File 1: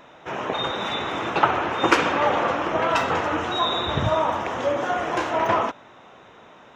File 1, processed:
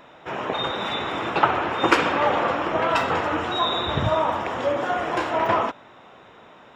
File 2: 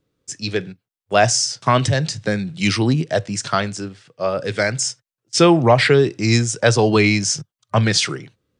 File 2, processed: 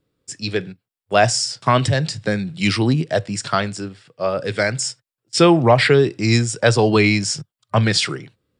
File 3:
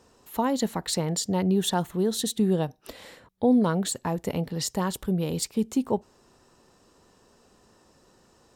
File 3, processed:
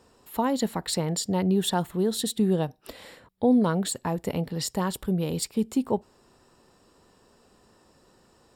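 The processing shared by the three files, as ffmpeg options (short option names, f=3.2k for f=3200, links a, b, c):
-af "bandreject=f=6.2k:w=6.2"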